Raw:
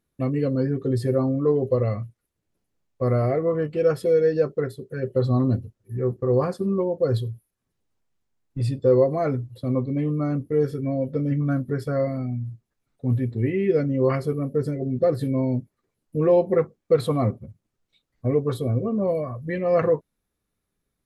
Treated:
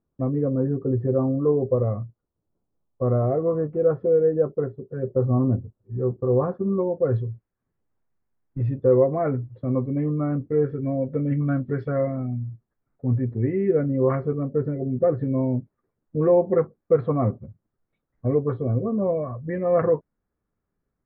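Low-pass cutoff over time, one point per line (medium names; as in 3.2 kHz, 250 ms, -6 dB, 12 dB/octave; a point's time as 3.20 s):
low-pass 24 dB/octave
6.34 s 1.2 kHz
7.04 s 1.9 kHz
10.97 s 1.9 kHz
11.67 s 3.5 kHz
12.15 s 1.7 kHz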